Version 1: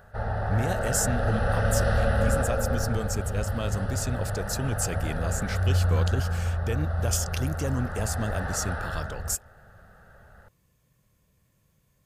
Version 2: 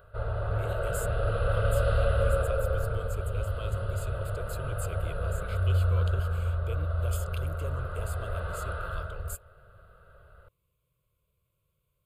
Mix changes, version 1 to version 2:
speech -7.0 dB; master: add fixed phaser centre 1200 Hz, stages 8

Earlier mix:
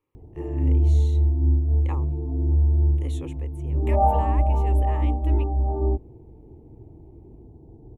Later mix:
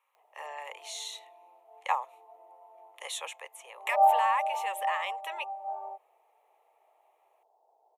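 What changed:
speech +11.0 dB; master: add steep high-pass 620 Hz 48 dB/oct

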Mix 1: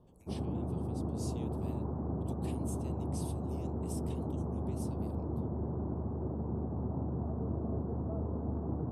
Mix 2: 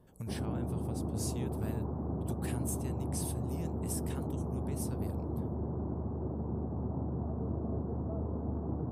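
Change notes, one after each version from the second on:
speech: remove ladder high-pass 2200 Hz, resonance 30%; master: remove Bessel low-pass 9700 Hz, order 2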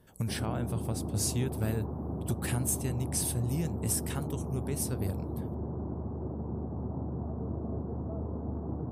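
speech +9.0 dB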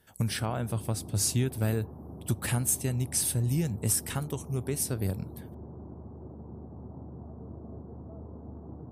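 speech +4.0 dB; background -8.0 dB

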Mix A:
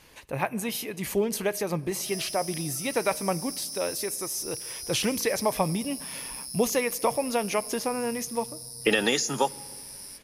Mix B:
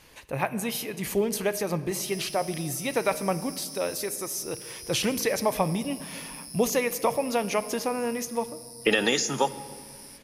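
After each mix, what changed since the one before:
speech: send +7.5 dB; background -4.5 dB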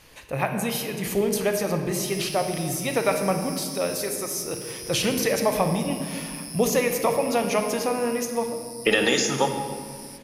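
speech: send +11.0 dB; background +4.0 dB

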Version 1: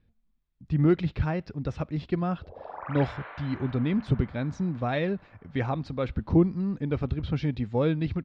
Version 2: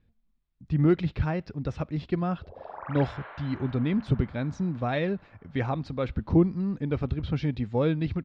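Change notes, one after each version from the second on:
reverb: off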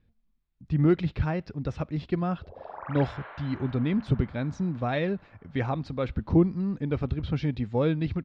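none

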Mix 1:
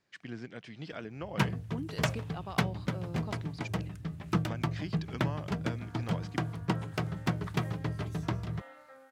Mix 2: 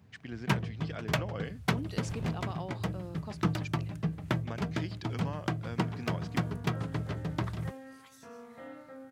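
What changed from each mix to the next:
first sound: entry -0.90 s; second sound: remove HPF 700 Hz 12 dB/oct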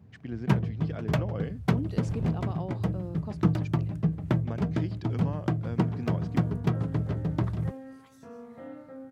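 master: add tilt shelf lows +6.5 dB, about 920 Hz

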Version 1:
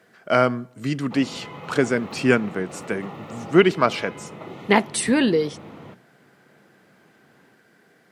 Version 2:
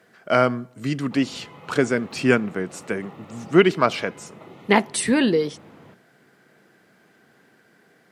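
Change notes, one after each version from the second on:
background -6.5 dB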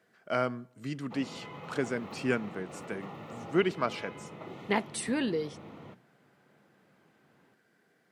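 speech -11.5 dB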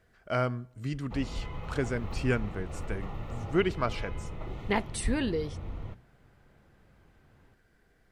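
master: remove HPF 160 Hz 24 dB/oct

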